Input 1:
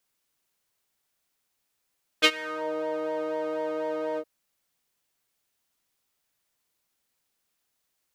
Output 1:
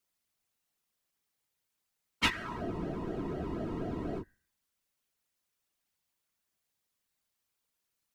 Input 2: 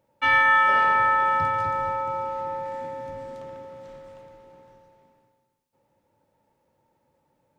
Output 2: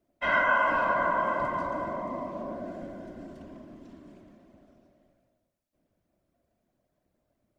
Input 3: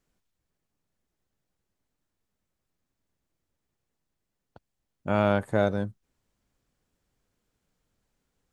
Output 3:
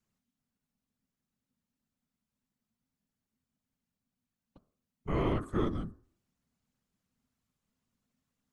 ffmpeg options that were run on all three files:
ffmpeg -i in.wav -af "bandreject=frequency=74.75:width_type=h:width=4,bandreject=frequency=149.5:width_type=h:width=4,bandreject=frequency=224.25:width_type=h:width=4,bandreject=frequency=299:width_type=h:width=4,bandreject=frequency=373.75:width_type=h:width=4,bandreject=frequency=448.5:width_type=h:width=4,bandreject=frequency=523.25:width_type=h:width=4,bandreject=frequency=598:width_type=h:width=4,bandreject=frequency=672.75:width_type=h:width=4,bandreject=frequency=747.5:width_type=h:width=4,bandreject=frequency=822.25:width_type=h:width=4,bandreject=frequency=897:width_type=h:width=4,bandreject=frequency=971.75:width_type=h:width=4,bandreject=frequency=1046.5:width_type=h:width=4,bandreject=frequency=1121.25:width_type=h:width=4,bandreject=frequency=1196:width_type=h:width=4,bandreject=frequency=1270.75:width_type=h:width=4,bandreject=frequency=1345.5:width_type=h:width=4,bandreject=frequency=1420.25:width_type=h:width=4,bandreject=frequency=1495:width_type=h:width=4,bandreject=frequency=1569.75:width_type=h:width=4,bandreject=frequency=1644.5:width_type=h:width=4,bandreject=frequency=1719.25:width_type=h:width=4,bandreject=frequency=1794:width_type=h:width=4,bandreject=frequency=1868.75:width_type=h:width=4,bandreject=frequency=1943.5:width_type=h:width=4,bandreject=frequency=2018.25:width_type=h:width=4,bandreject=frequency=2093:width_type=h:width=4,bandreject=frequency=2167.75:width_type=h:width=4,afftfilt=real='hypot(re,im)*cos(2*PI*random(0))':imag='hypot(re,im)*sin(2*PI*random(1))':win_size=512:overlap=0.75,afreqshift=-270" out.wav

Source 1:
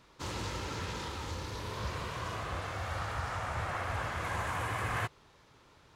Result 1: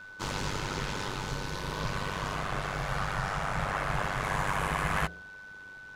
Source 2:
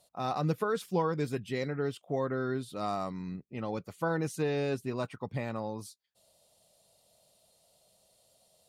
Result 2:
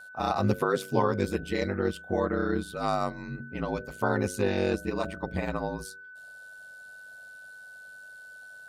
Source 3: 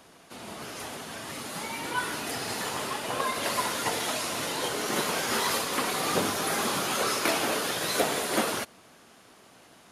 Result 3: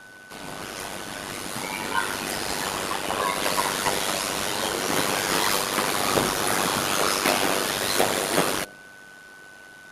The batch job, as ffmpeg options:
ffmpeg -i in.wav -af "bandreject=frequency=61.56:width_type=h:width=4,bandreject=frequency=123.12:width_type=h:width=4,bandreject=frequency=184.68:width_type=h:width=4,bandreject=frequency=246.24:width_type=h:width=4,bandreject=frequency=307.8:width_type=h:width=4,bandreject=frequency=369.36:width_type=h:width=4,bandreject=frequency=430.92:width_type=h:width=4,bandreject=frequency=492.48:width_type=h:width=4,bandreject=frequency=554.04:width_type=h:width=4,bandreject=frequency=615.6:width_type=h:width=4,bandreject=frequency=677.16:width_type=h:width=4,aeval=exprs='val(0)*sin(2*PI*49*n/s)':channel_layout=same,aeval=exprs='val(0)+0.00251*sin(2*PI*1500*n/s)':channel_layout=same,volume=7.5dB" out.wav

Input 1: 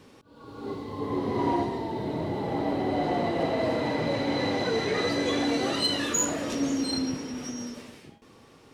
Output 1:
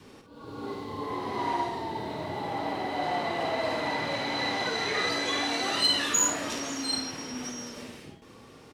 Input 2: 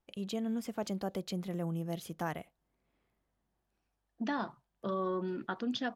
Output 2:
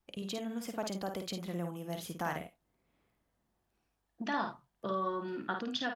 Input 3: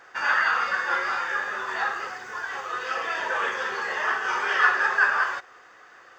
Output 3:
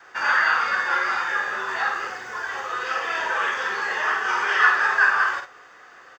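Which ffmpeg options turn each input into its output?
ffmpeg -i in.wav -filter_complex "[0:a]adynamicequalizer=threshold=0.00708:dfrequency=520:dqfactor=4.1:tfrequency=520:tqfactor=4.1:attack=5:release=100:ratio=0.375:range=2.5:mode=cutabove:tftype=bell,acrossover=split=620[link_01][link_02];[link_01]acompressor=threshold=-40dB:ratio=6[link_03];[link_03][link_02]amix=inputs=2:normalize=0,aecho=1:1:52|75:0.501|0.141,volume=2dB" out.wav

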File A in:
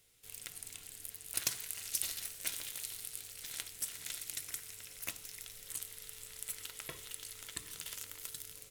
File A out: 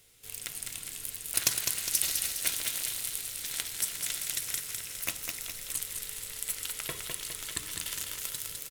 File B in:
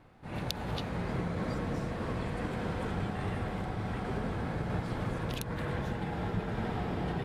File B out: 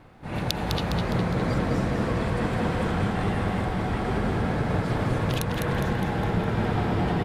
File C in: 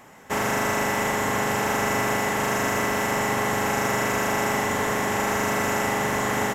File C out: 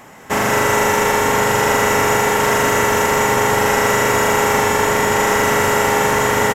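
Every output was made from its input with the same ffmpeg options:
ffmpeg -i in.wav -af "aecho=1:1:205|410|615|820|1025|1230|1435:0.562|0.292|0.152|0.0791|0.0411|0.0214|0.0111,volume=7.5dB" out.wav

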